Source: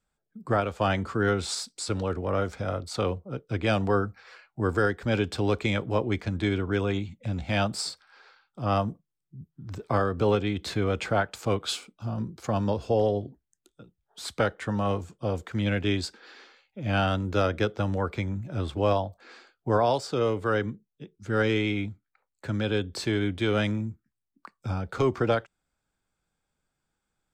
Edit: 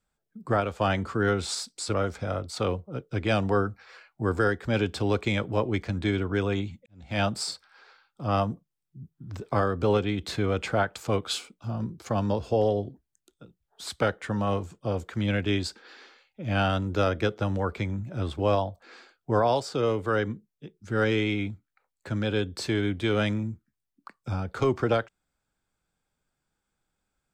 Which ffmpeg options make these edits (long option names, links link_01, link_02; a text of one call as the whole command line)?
ffmpeg -i in.wav -filter_complex "[0:a]asplit=3[link_01][link_02][link_03];[link_01]atrim=end=1.942[link_04];[link_02]atrim=start=2.318:end=7.24,asetpts=PTS-STARTPTS,afade=type=out:start_time=4.918:duration=0.004:curve=hsin[link_05];[link_03]atrim=start=7.24,asetpts=PTS-STARTPTS,afade=type=in:duration=0.34:curve=qua[link_06];[link_05][link_06]concat=n=2:v=0:a=1[link_07];[link_04][link_07]acrossfade=duration=0.004:curve1=hsin:curve2=hsin" out.wav